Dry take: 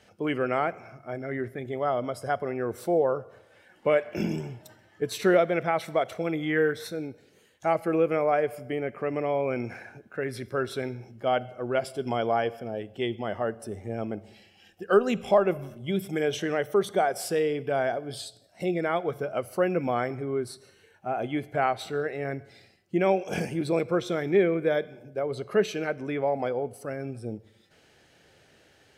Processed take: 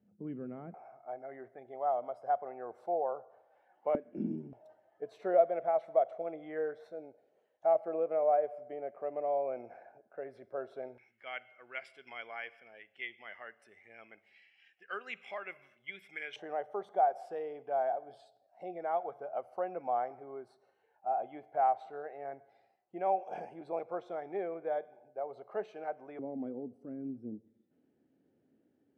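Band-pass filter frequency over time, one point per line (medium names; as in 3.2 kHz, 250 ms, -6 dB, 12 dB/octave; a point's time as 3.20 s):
band-pass filter, Q 4.4
200 Hz
from 0.74 s 760 Hz
from 3.95 s 260 Hz
from 4.53 s 660 Hz
from 10.98 s 2.1 kHz
from 16.36 s 770 Hz
from 26.19 s 260 Hz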